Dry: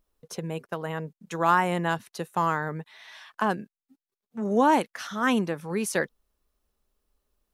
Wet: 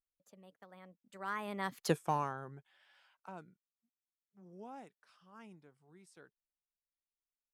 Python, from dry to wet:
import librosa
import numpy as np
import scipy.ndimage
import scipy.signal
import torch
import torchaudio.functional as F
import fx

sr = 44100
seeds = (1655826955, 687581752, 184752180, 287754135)

y = fx.doppler_pass(x, sr, speed_mps=48, closest_m=3.0, pass_at_s=1.9)
y = F.gain(torch.from_numpy(y), 2.5).numpy()